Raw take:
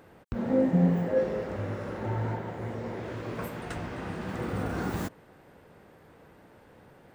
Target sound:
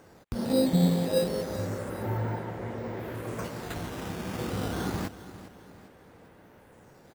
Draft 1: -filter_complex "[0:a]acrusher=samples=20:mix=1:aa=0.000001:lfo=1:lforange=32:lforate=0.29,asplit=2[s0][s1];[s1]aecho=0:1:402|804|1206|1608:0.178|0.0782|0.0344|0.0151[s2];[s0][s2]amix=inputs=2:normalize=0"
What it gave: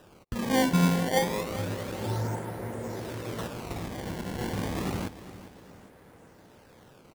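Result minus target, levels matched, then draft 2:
decimation with a swept rate: distortion +11 dB
-filter_complex "[0:a]acrusher=samples=6:mix=1:aa=0.000001:lfo=1:lforange=9.6:lforate=0.29,asplit=2[s0][s1];[s1]aecho=0:1:402|804|1206|1608:0.178|0.0782|0.0344|0.0151[s2];[s0][s2]amix=inputs=2:normalize=0"

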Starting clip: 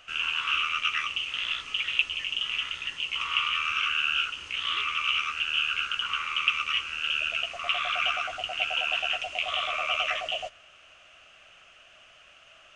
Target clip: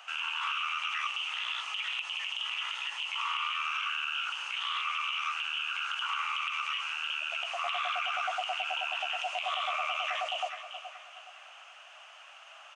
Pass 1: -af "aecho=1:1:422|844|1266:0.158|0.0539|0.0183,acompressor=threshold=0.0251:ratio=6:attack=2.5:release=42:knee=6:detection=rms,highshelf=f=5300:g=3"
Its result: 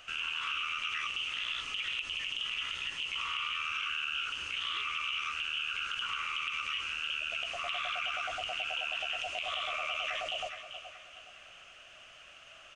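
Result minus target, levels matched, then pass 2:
1 kHz band -4.5 dB
-af "aecho=1:1:422|844|1266:0.158|0.0539|0.0183,acompressor=threshold=0.0251:ratio=6:attack=2.5:release=42:knee=6:detection=rms,highpass=f=860:t=q:w=4.3,highshelf=f=5300:g=3"

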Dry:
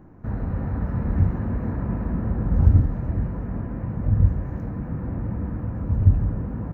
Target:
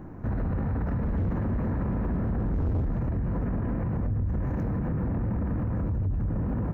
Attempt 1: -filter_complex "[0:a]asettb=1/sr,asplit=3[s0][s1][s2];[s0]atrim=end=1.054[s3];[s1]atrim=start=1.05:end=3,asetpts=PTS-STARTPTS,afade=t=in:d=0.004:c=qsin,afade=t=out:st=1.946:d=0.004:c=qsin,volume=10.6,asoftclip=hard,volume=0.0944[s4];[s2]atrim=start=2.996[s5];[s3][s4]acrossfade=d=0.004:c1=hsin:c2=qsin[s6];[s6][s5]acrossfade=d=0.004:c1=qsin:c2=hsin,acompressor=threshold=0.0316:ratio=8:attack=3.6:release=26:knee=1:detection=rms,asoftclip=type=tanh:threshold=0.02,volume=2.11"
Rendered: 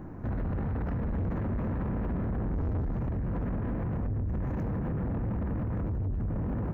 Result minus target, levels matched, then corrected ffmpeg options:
saturation: distortion +9 dB
-filter_complex "[0:a]asettb=1/sr,asplit=3[s0][s1][s2];[s0]atrim=end=1.054[s3];[s1]atrim=start=1.05:end=3,asetpts=PTS-STARTPTS,afade=t=in:d=0.004:c=qsin,afade=t=out:st=1.946:d=0.004:c=qsin,volume=10.6,asoftclip=hard,volume=0.0944[s4];[s2]atrim=start=2.996[s5];[s3][s4]acrossfade=d=0.004:c1=hsin:c2=qsin[s6];[s6][s5]acrossfade=d=0.004:c1=qsin:c2=hsin,acompressor=threshold=0.0316:ratio=8:attack=3.6:release=26:knee=1:detection=rms,asoftclip=type=tanh:threshold=0.0447,volume=2.11"

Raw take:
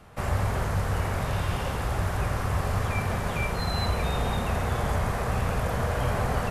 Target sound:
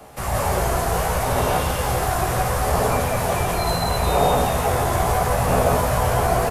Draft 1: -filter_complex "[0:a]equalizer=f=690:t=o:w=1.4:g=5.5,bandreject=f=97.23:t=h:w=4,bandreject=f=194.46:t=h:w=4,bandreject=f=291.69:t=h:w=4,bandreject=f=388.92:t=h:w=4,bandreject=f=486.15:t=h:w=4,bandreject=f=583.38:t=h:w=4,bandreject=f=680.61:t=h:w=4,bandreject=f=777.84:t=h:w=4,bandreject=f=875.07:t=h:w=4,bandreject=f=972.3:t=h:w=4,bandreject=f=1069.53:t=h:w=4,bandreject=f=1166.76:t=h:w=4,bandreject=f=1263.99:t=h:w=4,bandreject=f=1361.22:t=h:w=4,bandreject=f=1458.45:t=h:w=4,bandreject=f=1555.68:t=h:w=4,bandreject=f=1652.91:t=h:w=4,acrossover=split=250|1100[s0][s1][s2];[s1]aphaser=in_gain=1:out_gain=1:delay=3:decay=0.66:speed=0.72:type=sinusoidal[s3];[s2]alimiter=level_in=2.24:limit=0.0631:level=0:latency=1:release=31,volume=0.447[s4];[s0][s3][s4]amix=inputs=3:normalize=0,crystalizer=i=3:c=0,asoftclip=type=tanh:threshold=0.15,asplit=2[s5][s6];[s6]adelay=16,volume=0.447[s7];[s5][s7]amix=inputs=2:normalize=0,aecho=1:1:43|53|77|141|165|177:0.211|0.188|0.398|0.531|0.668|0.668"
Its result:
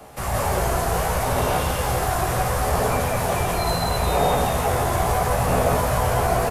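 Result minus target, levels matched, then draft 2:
saturation: distortion +17 dB
-filter_complex "[0:a]equalizer=f=690:t=o:w=1.4:g=5.5,bandreject=f=97.23:t=h:w=4,bandreject=f=194.46:t=h:w=4,bandreject=f=291.69:t=h:w=4,bandreject=f=388.92:t=h:w=4,bandreject=f=486.15:t=h:w=4,bandreject=f=583.38:t=h:w=4,bandreject=f=680.61:t=h:w=4,bandreject=f=777.84:t=h:w=4,bandreject=f=875.07:t=h:w=4,bandreject=f=972.3:t=h:w=4,bandreject=f=1069.53:t=h:w=4,bandreject=f=1166.76:t=h:w=4,bandreject=f=1263.99:t=h:w=4,bandreject=f=1361.22:t=h:w=4,bandreject=f=1458.45:t=h:w=4,bandreject=f=1555.68:t=h:w=4,bandreject=f=1652.91:t=h:w=4,acrossover=split=250|1100[s0][s1][s2];[s1]aphaser=in_gain=1:out_gain=1:delay=3:decay=0.66:speed=0.72:type=sinusoidal[s3];[s2]alimiter=level_in=2.24:limit=0.0631:level=0:latency=1:release=31,volume=0.447[s4];[s0][s3][s4]amix=inputs=3:normalize=0,crystalizer=i=3:c=0,asoftclip=type=tanh:threshold=0.501,asplit=2[s5][s6];[s6]adelay=16,volume=0.447[s7];[s5][s7]amix=inputs=2:normalize=0,aecho=1:1:43|53|77|141|165|177:0.211|0.188|0.398|0.531|0.668|0.668"

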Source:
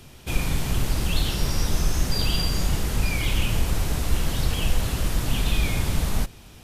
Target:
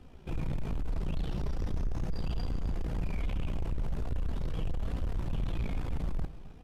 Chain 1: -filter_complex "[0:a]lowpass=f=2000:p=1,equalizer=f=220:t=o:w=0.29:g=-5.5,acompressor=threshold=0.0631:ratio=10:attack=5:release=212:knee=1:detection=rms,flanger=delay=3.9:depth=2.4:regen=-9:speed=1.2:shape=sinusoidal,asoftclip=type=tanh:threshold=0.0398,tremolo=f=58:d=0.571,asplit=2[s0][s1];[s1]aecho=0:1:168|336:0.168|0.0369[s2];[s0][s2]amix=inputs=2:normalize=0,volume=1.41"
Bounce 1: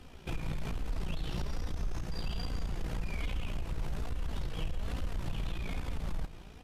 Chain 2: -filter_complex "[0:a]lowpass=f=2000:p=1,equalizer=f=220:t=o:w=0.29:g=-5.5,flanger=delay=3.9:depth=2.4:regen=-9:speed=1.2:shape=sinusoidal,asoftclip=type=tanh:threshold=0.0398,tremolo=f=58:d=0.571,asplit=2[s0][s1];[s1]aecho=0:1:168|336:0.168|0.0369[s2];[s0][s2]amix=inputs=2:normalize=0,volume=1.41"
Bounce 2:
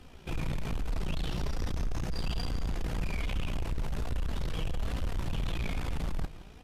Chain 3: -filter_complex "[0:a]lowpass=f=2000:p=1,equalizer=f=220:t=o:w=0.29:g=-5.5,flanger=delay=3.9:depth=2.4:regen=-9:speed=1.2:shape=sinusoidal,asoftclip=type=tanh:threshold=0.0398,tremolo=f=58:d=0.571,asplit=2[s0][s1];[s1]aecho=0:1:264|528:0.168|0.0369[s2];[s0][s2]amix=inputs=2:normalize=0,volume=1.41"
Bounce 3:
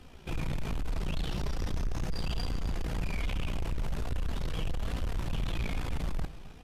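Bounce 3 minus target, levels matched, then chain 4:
2 kHz band +6.5 dB
-filter_complex "[0:a]lowpass=f=630:p=1,equalizer=f=220:t=o:w=0.29:g=-5.5,flanger=delay=3.9:depth=2.4:regen=-9:speed=1.2:shape=sinusoidal,asoftclip=type=tanh:threshold=0.0398,tremolo=f=58:d=0.571,asplit=2[s0][s1];[s1]aecho=0:1:264|528:0.168|0.0369[s2];[s0][s2]amix=inputs=2:normalize=0,volume=1.41"

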